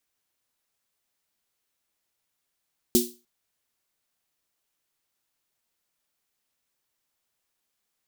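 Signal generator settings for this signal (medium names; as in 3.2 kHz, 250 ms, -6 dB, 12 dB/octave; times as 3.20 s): snare drum length 0.30 s, tones 240 Hz, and 360 Hz, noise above 3.6 kHz, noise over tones -2 dB, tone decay 0.29 s, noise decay 0.31 s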